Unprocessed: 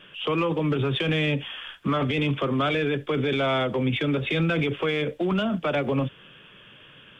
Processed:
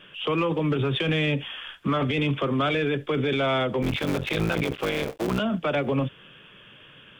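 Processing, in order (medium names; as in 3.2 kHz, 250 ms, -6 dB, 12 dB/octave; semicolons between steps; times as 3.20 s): 3.82–5.40 s: cycle switcher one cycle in 3, muted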